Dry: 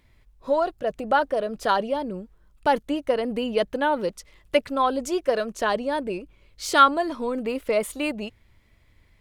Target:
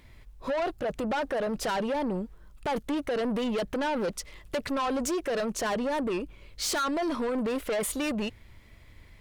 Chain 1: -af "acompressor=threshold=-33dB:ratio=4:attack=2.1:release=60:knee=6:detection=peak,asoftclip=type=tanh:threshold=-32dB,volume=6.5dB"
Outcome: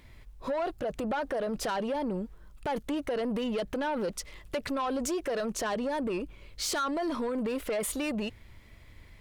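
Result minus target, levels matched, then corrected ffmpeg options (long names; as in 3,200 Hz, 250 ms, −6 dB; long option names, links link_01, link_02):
downward compressor: peak gain reduction +5.5 dB
-af "acompressor=threshold=-25.5dB:ratio=4:attack=2.1:release=60:knee=6:detection=peak,asoftclip=type=tanh:threshold=-32dB,volume=6.5dB"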